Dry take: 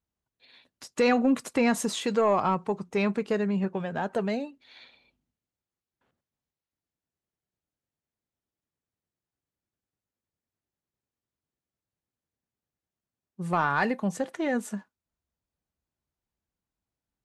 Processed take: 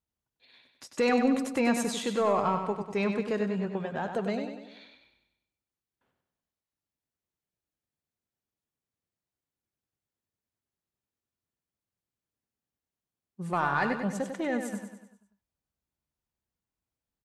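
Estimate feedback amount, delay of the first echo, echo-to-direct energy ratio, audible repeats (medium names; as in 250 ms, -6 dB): 50%, 97 ms, -5.5 dB, 5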